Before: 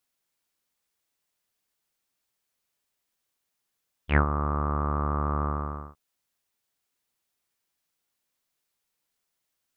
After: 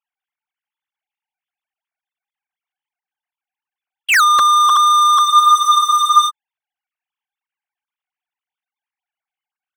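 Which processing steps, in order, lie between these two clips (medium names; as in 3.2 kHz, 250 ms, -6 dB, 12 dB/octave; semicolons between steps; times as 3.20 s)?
formants replaced by sine waves; waveshaping leveller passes 5; spectral freeze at 5.26 s, 1.03 s; trim +6 dB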